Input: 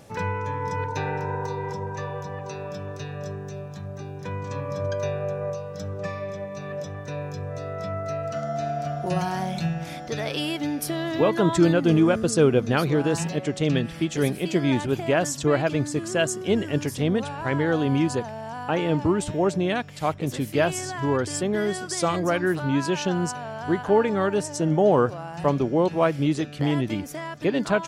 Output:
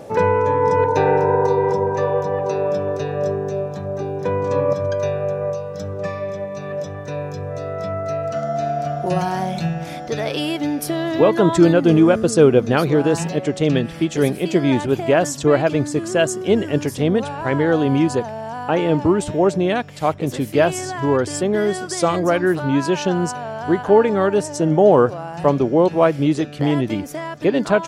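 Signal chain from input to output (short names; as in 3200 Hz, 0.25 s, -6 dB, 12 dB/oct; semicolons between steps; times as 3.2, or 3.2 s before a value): bell 500 Hz +14 dB 2.2 oct, from 4.73 s +4.5 dB; gain +2.5 dB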